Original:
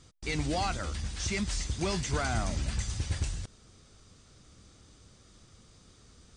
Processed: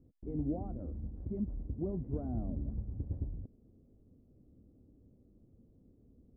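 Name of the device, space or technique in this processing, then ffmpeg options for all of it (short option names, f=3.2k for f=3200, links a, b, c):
under water: -af "lowpass=f=560:w=0.5412,lowpass=f=560:w=1.3066,equalizer=f=260:t=o:w=0.57:g=9,volume=-6dB"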